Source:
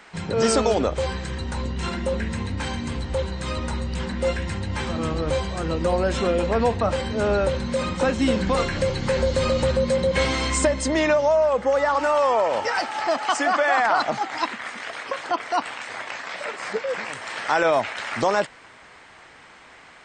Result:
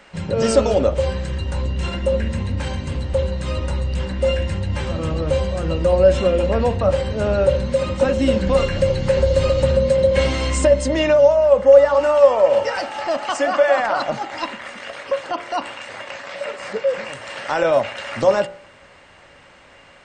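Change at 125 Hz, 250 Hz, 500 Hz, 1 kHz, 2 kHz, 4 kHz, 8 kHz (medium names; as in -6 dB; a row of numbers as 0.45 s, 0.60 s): +5.5 dB, +1.5 dB, +6.5 dB, -1.0 dB, -1.0 dB, +0.5 dB, -1.5 dB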